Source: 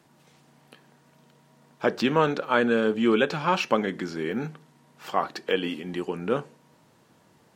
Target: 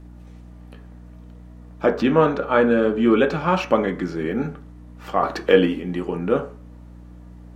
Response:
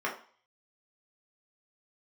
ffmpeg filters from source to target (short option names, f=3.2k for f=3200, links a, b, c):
-filter_complex "[0:a]asettb=1/sr,asplit=3[a][b][c];[a]atrim=end=1.904[d];[b]atrim=start=1.9:end=3.16,asetpts=PTS-STARTPTS,afade=t=in:d=0.004:c=qsin,afade=t=out:st=1.256:d=0.004:c=qsin,highshelf=f=6k:g=-5[e];[c]atrim=start=3.156[f];[d][e]acrossfade=d=0.004:c1=hsin:c2=qsin[g];[g][f]acrossfade=d=0.004:c1=qsin:c2=hsin,asettb=1/sr,asplit=3[h][i][j];[h]atrim=end=5.234[k];[i]atrim=start=5.23:end=5.66,asetpts=PTS-STARTPTS,afade=t=in:d=0.004:c=qsin,afade=t=out:st=0.426:d=0.004:c=qsin,acontrast=38[l];[j]atrim=start=5.656[m];[k][l]acrossfade=d=0.004:c1=hsin:c2=qsin[n];[n][m]acrossfade=d=0.004:c1=qsin:c2=hsin,aeval=exprs='val(0)+0.00501*(sin(2*PI*60*n/s)+sin(2*PI*2*60*n/s)/2+sin(2*PI*3*60*n/s)/3+sin(2*PI*4*60*n/s)/4+sin(2*PI*5*60*n/s)/5)':c=same,tiltshelf=f=720:g=5,asplit=2[o][p];[1:a]atrim=start_sample=2205,asetrate=48510,aresample=44100[q];[p][q]afir=irnorm=-1:irlink=0,volume=-8.5dB[r];[o][r]amix=inputs=2:normalize=0,volume=1dB"